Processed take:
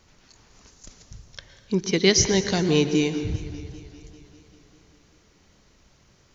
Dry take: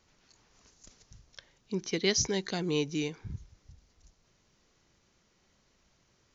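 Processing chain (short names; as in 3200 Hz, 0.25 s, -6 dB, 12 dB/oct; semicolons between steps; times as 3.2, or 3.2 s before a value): low shelf 160 Hz +4.5 dB; on a send at -10 dB: reverb RT60 1.9 s, pre-delay 0.103 s; on the sum: warbling echo 0.198 s, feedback 72%, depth 108 cents, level -20 dB; gain +8.5 dB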